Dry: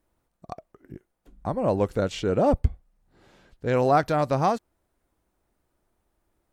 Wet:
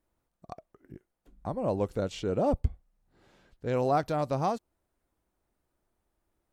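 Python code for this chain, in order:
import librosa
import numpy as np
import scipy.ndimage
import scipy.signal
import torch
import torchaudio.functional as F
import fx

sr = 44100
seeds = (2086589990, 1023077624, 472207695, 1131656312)

y = fx.dynamic_eq(x, sr, hz=1700.0, q=1.5, threshold_db=-42.0, ratio=4.0, max_db=-5)
y = y * librosa.db_to_amplitude(-5.5)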